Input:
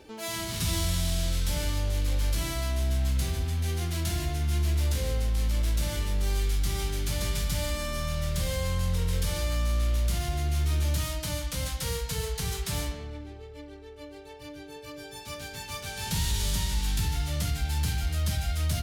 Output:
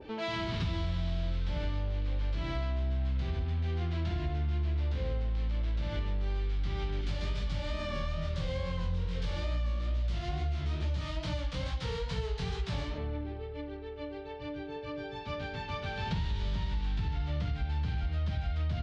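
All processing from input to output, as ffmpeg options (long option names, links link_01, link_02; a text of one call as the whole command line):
ffmpeg -i in.wav -filter_complex "[0:a]asettb=1/sr,asplit=3[link_01][link_02][link_03];[link_01]atrim=end=7.014[link_04];[link_02]atrim=start=7.01:end=12.98,asetpts=PTS-STARTPTS,afade=type=in:duration=0.004:curve=qsin,afade=type=out:start_time=5.966:duration=0.004:curve=qsin,equalizer=frequency=9700:width=0.48:gain=12,flanger=delay=15.5:depth=7.7:speed=2.3[link_05];[link_03]atrim=start=12.976[link_06];[link_04][link_05]acrossfade=duration=0.004:curve1=hsin:curve2=qsin[link_07];[link_07][link_06]acrossfade=duration=0.004:curve1=qsin:curve2=hsin,lowpass=frequency=3900:width=0.5412,lowpass=frequency=3900:width=1.3066,acompressor=threshold=-33dB:ratio=6,adynamicequalizer=threshold=0.00178:dfrequency=1600:dqfactor=0.7:tfrequency=1600:tqfactor=0.7:attack=5:release=100:ratio=0.375:range=3:mode=cutabove:tftype=highshelf,volume=4dB" out.wav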